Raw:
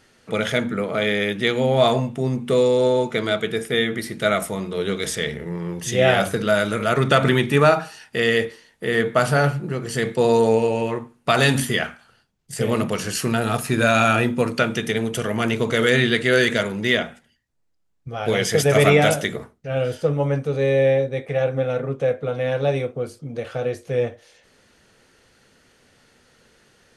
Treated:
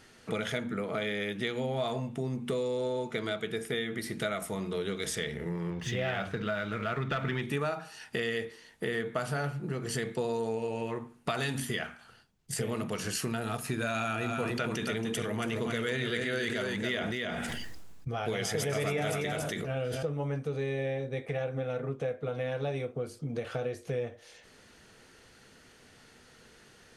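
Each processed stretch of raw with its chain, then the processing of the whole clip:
5.70–7.42 s: low-pass 2.8 kHz + peaking EQ 420 Hz -6.5 dB 2.8 oct + waveshaping leveller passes 1
13.93–20.03 s: delay 278 ms -6.5 dB + decay stretcher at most 30 dB/s
whole clip: band-stop 550 Hz, Q 13; compression 4:1, threshold -32 dBFS

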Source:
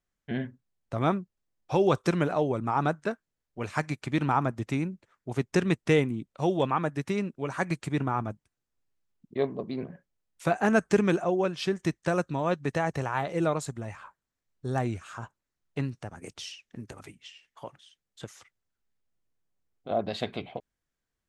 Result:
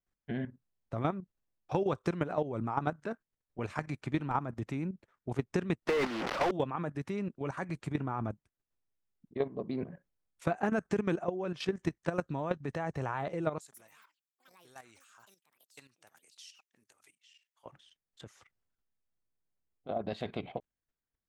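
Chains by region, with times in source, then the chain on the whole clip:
5.88–6.51 s: one-bit delta coder 32 kbps, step -36 dBFS + high-pass 350 Hz + overdrive pedal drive 36 dB, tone 2.9 kHz, clips at -16 dBFS
13.58–17.66 s: differentiator + ever faster or slower copies 144 ms, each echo +6 st, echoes 3, each echo -6 dB
whole clip: level held to a coarse grid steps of 12 dB; treble shelf 3.1 kHz -8 dB; compression 5:1, threshold -29 dBFS; trim +2 dB

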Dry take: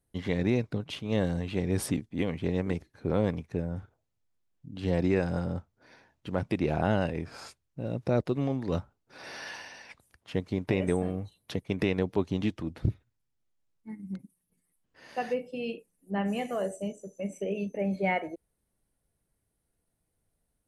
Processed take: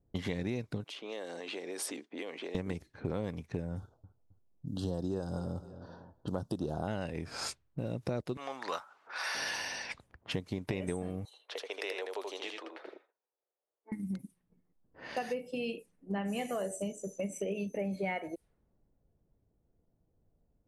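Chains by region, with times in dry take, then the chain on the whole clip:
0.84–2.55 s: high-pass 340 Hz 24 dB/octave + compression 4:1, threshold -46 dBFS
3.77–6.88 s: short-mantissa float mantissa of 8-bit + Butterworth band-stop 2.2 kHz, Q 0.95 + feedback delay 266 ms, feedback 33%, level -21 dB
8.37–9.35 s: high-pass 840 Hz + peaking EQ 1.2 kHz +8 dB 1.3 oct + upward compressor, threshold -46 dBFS
11.25–13.92 s: steep high-pass 430 Hz + compression 1.5:1, threshold -59 dBFS + delay 81 ms -4 dB
whole clip: compression 4:1, threshold -41 dBFS; level-controlled noise filter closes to 600 Hz, open at -42.5 dBFS; treble shelf 4.8 kHz +9 dB; trim +6.5 dB

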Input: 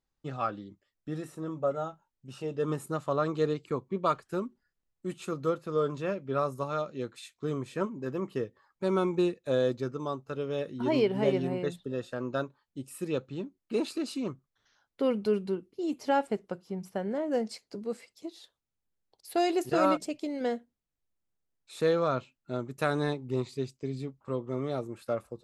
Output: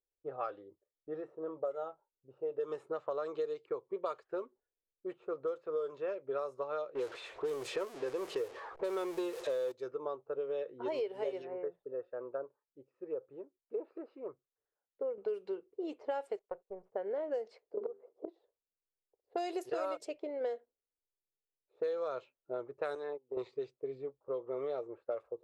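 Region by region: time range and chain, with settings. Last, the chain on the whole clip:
6.95–9.72 s: jump at every zero crossing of -38 dBFS + treble shelf 5.8 kHz +6.5 dB + waveshaping leveller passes 1
11.42–15.18 s: low-pass that closes with the level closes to 730 Hz, closed at -26 dBFS + rippled Chebyshev low-pass 6.8 kHz, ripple 6 dB + treble shelf 2.7 kHz +10.5 dB
16.39–16.92 s: partial rectifier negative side -12 dB + gate -58 dBFS, range -17 dB + peaking EQ 320 Hz -9.5 dB 0.35 oct
17.77–18.28 s: high-order bell 590 Hz +15.5 dB 2.9 oct + inverted gate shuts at -20 dBFS, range -27 dB + hum notches 50/100/150/200/250/300/350/400 Hz
22.95–23.37 s: gate -36 dBFS, range -19 dB + high-pass 180 Hz + compression 5:1, threshold -33 dBFS
whole clip: level-controlled noise filter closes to 310 Hz, open at -23.5 dBFS; resonant low shelf 310 Hz -13 dB, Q 3; compression 6:1, threshold -30 dBFS; trim -3.5 dB

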